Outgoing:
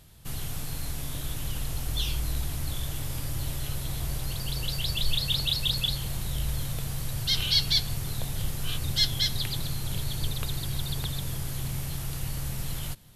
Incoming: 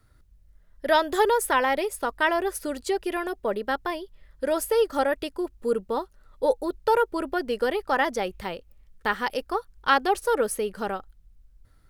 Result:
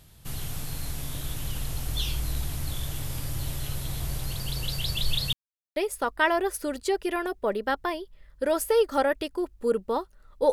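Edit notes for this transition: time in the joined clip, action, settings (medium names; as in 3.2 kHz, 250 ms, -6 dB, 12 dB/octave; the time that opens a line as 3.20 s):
outgoing
5.33–5.76 s: mute
5.76 s: go over to incoming from 1.77 s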